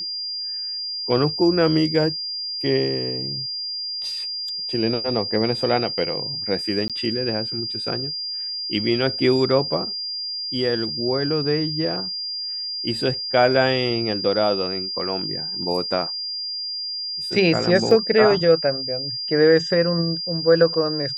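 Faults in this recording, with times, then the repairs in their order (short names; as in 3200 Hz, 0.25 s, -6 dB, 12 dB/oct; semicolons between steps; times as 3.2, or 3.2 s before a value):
tone 4800 Hz -26 dBFS
6.88–6.9 gap 17 ms
17.91 gap 2.4 ms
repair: notch 4800 Hz, Q 30; interpolate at 6.88, 17 ms; interpolate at 17.91, 2.4 ms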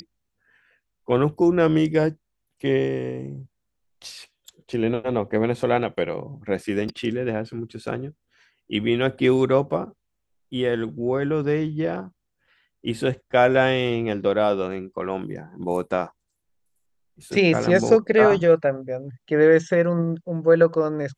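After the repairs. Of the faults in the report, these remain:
none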